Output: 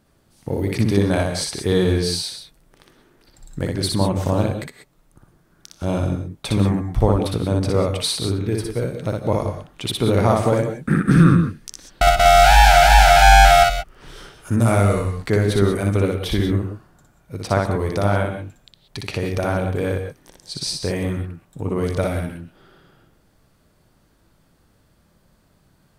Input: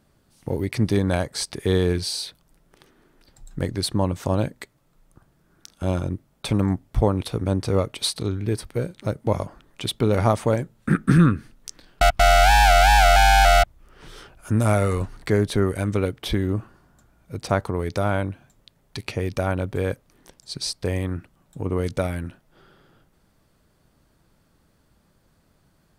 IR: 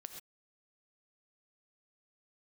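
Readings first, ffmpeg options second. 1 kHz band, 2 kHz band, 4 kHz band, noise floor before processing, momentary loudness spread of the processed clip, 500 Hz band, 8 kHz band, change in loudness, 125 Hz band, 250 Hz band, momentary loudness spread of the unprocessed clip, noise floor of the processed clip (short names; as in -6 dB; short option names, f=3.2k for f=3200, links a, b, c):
+4.5 dB, +3.5 dB, +3.5 dB, -64 dBFS, 18 LU, +4.0 dB, +3.5 dB, +3.5 dB, +3.5 dB, +3.5 dB, 17 LU, -60 dBFS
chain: -filter_complex "[0:a]asplit=2[a][b];[1:a]atrim=start_sample=2205,adelay=60[c];[b][c]afir=irnorm=-1:irlink=0,volume=3.5dB[d];[a][d]amix=inputs=2:normalize=0,volume=1dB"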